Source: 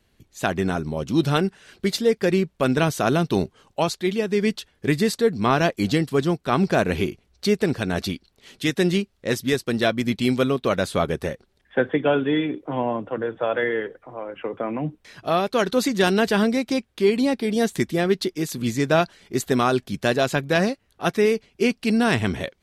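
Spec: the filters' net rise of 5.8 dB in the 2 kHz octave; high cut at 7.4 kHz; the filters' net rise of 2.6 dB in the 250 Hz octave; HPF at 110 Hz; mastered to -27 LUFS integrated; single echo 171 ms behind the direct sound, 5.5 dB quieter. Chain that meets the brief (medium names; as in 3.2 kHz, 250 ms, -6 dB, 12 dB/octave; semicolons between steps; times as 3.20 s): high-pass 110 Hz; low-pass 7.4 kHz; peaking EQ 250 Hz +3.5 dB; peaking EQ 2 kHz +7.5 dB; delay 171 ms -5.5 dB; trim -7.5 dB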